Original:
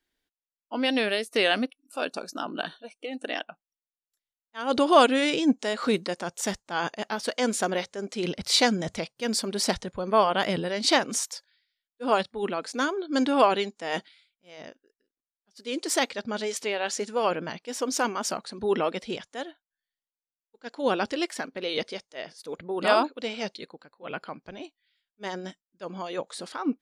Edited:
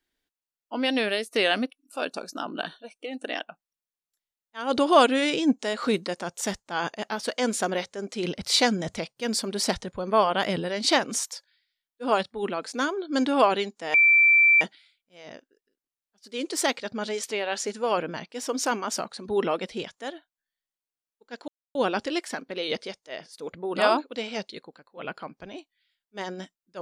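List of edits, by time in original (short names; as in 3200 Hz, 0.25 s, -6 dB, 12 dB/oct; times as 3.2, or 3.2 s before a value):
13.94 add tone 2340 Hz -14 dBFS 0.67 s
20.81 insert silence 0.27 s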